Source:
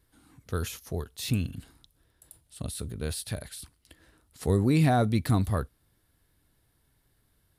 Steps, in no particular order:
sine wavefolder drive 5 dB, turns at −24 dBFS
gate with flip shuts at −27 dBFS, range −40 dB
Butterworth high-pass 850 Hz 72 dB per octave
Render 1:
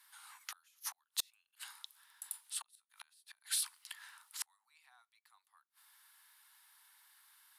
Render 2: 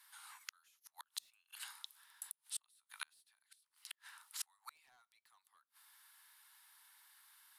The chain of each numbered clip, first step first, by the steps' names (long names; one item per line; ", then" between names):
gate with flip, then Butterworth high-pass, then sine wavefolder
Butterworth high-pass, then sine wavefolder, then gate with flip